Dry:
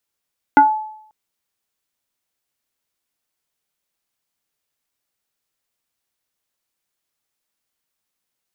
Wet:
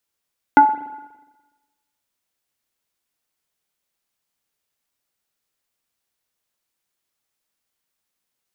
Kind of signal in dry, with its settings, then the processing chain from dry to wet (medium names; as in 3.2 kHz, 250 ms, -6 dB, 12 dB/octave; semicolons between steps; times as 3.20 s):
FM tone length 0.54 s, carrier 863 Hz, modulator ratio 0.67, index 0.99, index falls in 0.24 s exponential, decay 0.69 s, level -4 dB
spring tank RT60 1.2 s, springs 41/59 ms, chirp 40 ms, DRR 12.5 dB